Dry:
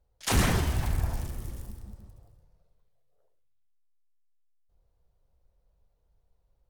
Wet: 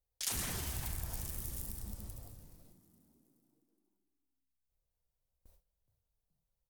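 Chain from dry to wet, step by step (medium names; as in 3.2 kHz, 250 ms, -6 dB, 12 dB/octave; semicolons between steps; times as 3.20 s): gate with hold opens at -55 dBFS; pre-emphasis filter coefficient 0.8; compression 5:1, threshold -56 dBFS, peak gain reduction 23.5 dB; frequency-shifting echo 421 ms, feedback 52%, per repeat +65 Hz, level -19 dB; trim +17.5 dB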